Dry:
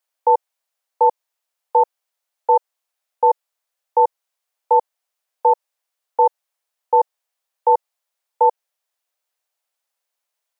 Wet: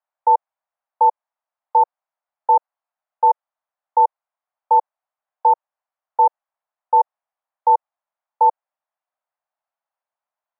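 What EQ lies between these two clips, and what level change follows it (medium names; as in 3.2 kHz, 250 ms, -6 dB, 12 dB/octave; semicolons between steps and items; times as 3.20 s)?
high-pass 670 Hz 24 dB/octave; low-pass 1 kHz 12 dB/octave; +4.0 dB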